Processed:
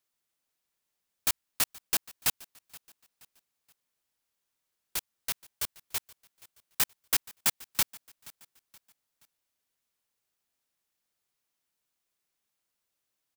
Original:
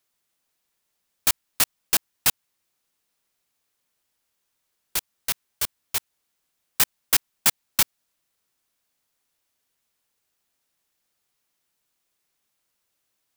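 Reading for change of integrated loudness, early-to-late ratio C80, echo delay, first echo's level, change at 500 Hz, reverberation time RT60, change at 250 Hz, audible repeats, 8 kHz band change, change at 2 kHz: -7.0 dB, none, 0.475 s, -22.0 dB, -7.0 dB, none, -7.0 dB, 2, -7.0 dB, -7.0 dB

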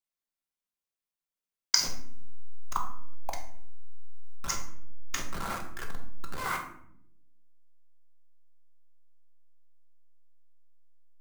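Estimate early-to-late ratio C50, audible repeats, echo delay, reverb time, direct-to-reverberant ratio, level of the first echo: 7.5 dB, none, none, 0.70 s, 2.0 dB, none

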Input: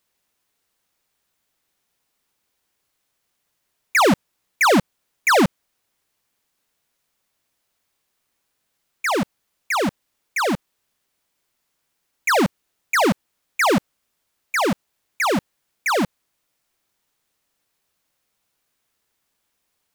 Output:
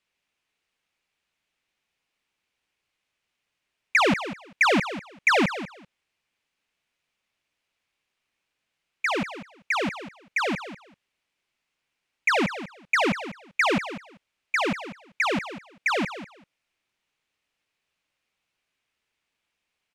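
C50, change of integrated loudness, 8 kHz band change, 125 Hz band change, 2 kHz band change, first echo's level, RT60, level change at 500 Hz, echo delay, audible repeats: none, -4.0 dB, -10.5 dB, -6.5 dB, -1.5 dB, -12.5 dB, none, -6.0 dB, 0.195 s, 2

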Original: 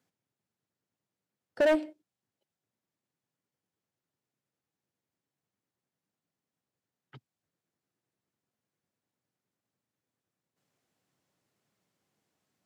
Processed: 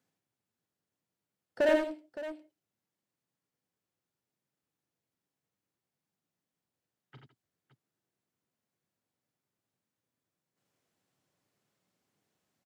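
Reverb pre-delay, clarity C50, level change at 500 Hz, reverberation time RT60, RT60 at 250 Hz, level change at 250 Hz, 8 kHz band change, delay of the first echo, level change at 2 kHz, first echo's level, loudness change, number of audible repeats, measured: none, none, -1.0 dB, none, none, -1.5 dB, n/a, 40 ms, -0.5 dB, -9.5 dB, -4.0 dB, 4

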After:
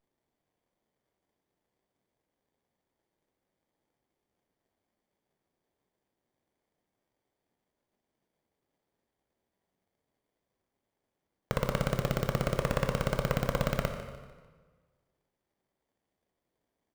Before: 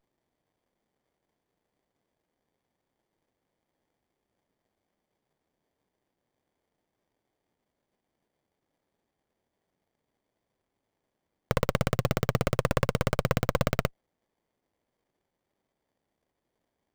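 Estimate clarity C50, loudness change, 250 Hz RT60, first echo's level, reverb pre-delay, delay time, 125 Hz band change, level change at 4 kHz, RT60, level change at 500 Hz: 6.5 dB, -3.0 dB, 1.5 s, -13.0 dB, 14 ms, 0.149 s, -3.0 dB, -3.0 dB, 1.5 s, -2.5 dB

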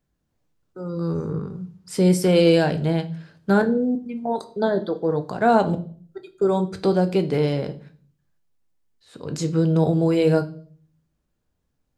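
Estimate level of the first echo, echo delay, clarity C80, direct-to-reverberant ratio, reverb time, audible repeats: none, none, 21.0 dB, 8.0 dB, 0.50 s, none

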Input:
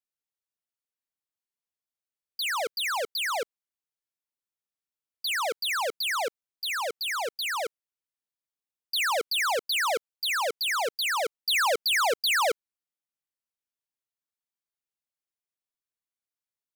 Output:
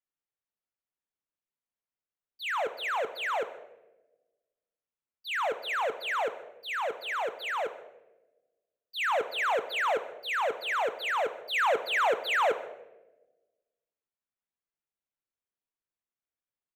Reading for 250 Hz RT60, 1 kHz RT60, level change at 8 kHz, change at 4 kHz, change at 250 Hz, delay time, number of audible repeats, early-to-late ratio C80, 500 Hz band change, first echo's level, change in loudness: 1.5 s, 0.85 s, -15.0 dB, -9.0 dB, +0.5 dB, 0.146 s, 1, 15.0 dB, +0.5 dB, -21.0 dB, -3.0 dB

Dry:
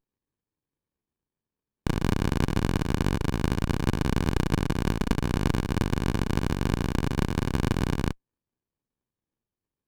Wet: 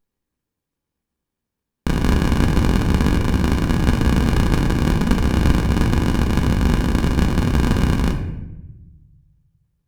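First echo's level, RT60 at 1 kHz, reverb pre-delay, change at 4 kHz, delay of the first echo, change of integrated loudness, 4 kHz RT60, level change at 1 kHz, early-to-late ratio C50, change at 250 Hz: none, 0.80 s, 4 ms, +7.0 dB, none, +8.5 dB, 0.60 s, +7.0 dB, 7.5 dB, +8.5 dB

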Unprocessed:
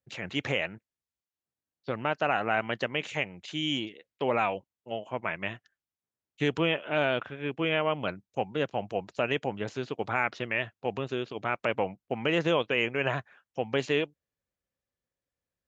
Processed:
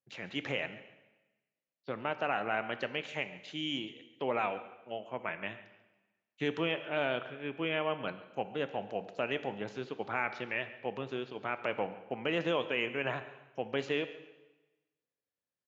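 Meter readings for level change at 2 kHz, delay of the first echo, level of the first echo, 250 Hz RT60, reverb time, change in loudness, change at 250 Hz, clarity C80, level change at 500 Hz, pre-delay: -5.0 dB, 0.14 s, -18.5 dB, 1.2 s, 1.1 s, -5.5 dB, -5.5 dB, 13.5 dB, -5.0 dB, 11 ms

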